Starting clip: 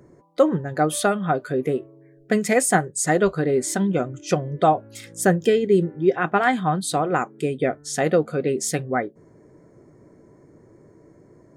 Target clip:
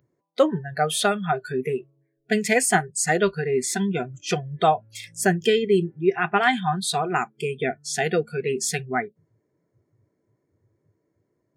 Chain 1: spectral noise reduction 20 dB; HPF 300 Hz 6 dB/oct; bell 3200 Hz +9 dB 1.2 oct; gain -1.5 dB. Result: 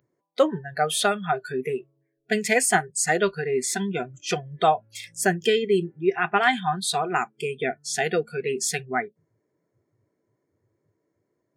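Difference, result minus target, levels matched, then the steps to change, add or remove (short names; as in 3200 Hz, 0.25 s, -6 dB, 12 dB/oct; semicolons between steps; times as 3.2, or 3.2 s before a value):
125 Hz band -4.0 dB
change: HPF 110 Hz 6 dB/oct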